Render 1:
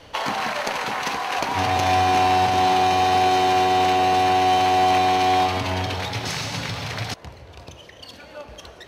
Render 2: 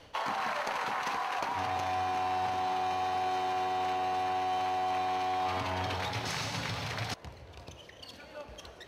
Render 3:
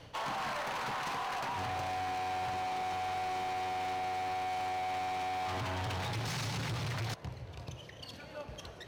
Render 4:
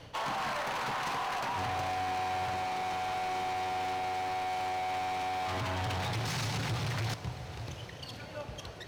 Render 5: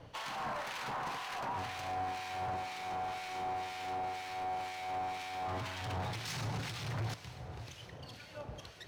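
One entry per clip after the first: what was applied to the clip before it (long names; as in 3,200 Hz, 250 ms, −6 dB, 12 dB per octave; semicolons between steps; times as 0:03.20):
dynamic equaliser 1,100 Hz, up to +7 dB, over −34 dBFS, Q 0.8; reversed playback; downward compressor, threshold −23 dBFS, peak gain reduction 12 dB; reversed playback; level −7 dB
parametric band 130 Hz +10.5 dB 0.88 octaves; gain into a clipping stage and back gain 34 dB
feedback delay with all-pass diffusion 656 ms, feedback 59%, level −14.5 dB; level +2.5 dB
two-band tremolo in antiphase 2 Hz, depth 70%, crossover 1,500 Hz; level −2 dB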